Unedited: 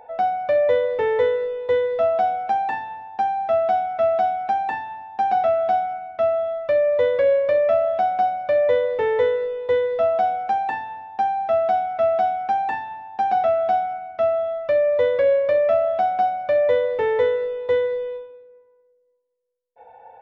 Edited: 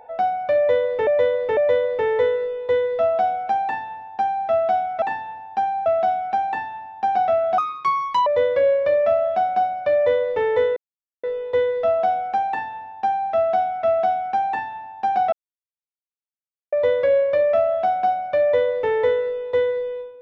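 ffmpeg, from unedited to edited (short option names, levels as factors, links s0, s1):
-filter_complex "[0:a]asplit=10[s0][s1][s2][s3][s4][s5][s6][s7][s8][s9];[s0]atrim=end=1.072[s10];[s1]atrim=start=0.568:end=1.072[s11];[s2]atrim=start=0.568:end=4.022[s12];[s3]atrim=start=2.638:end=3.482[s13];[s4]atrim=start=4.018:end=5.744[s14];[s5]atrim=start=5.74:end=6.89,asetpts=PTS-STARTPTS,asetrate=74088,aresample=44100[s15];[s6]atrim=start=6.886:end=9.39,asetpts=PTS-STARTPTS,afade=t=out:st=2.5:d=0.004:c=hsin,apad=pad_dur=0.47[s16];[s7]atrim=start=9.39:end=13.48,asetpts=PTS-STARTPTS,afade=t=in:d=0.004:c=hsin,afade=t=out:st=4.086:d=0.004:c=hsin[s17];[s8]atrim=start=13.48:end=14.88,asetpts=PTS-STARTPTS,volume=0[s18];[s9]atrim=start=14.88,asetpts=PTS-STARTPTS,afade=t=in:d=0.004:c=hsin[s19];[s10][s11]acrossfade=d=0.004:c1=hsin:c2=hsin[s20];[s20][s12]acrossfade=d=0.004:c1=hsin:c2=hsin[s21];[s21][s13]acrossfade=d=0.004:c1=hsin:c2=hsin[s22];[s22][s14]acrossfade=d=0.004:c1=hsin:c2=hsin[s23];[s23][s15]acrossfade=d=0.004:c1=hsin:c2=hsin[s24];[s16][s17][s18][s19]concat=n=4:v=0:a=1[s25];[s24][s25]acrossfade=d=0.004:c1=hsin:c2=hsin"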